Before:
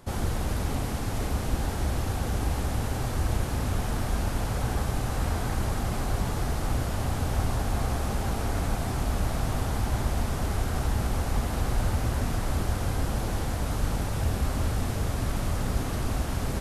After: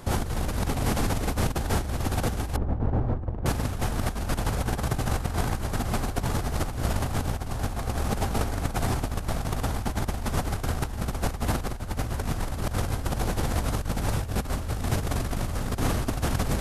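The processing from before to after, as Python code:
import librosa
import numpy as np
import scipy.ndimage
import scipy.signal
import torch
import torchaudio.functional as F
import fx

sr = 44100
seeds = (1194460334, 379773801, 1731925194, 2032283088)

y = fx.bessel_lowpass(x, sr, hz=660.0, order=2, at=(2.56, 3.46))
y = fx.over_compress(y, sr, threshold_db=-30.0, ratio=-0.5)
y = y * librosa.db_to_amplitude(4.0)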